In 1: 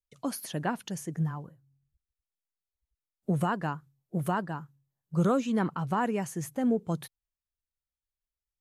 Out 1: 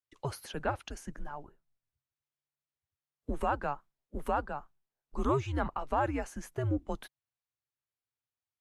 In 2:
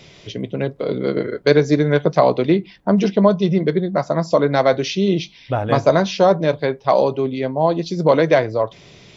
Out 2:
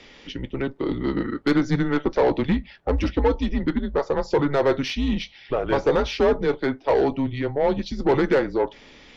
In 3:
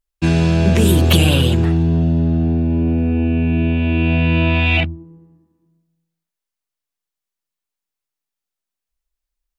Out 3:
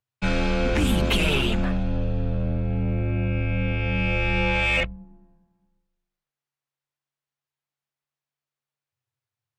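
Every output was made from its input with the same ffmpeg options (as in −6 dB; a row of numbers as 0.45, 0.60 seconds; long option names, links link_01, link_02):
-filter_complex "[0:a]asplit=2[link_01][link_02];[link_02]highpass=frequency=720:poles=1,volume=17dB,asoftclip=type=tanh:threshold=-1dB[link_03];[link_01][link_03]amix=inputs=2:normalize=0,lowpass=frequency=2000:poles=1,volume=-6dB,afreqshift=-140,volume=-8.5dB"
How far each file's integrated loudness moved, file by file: −4.0, −5.5, −8.5 LU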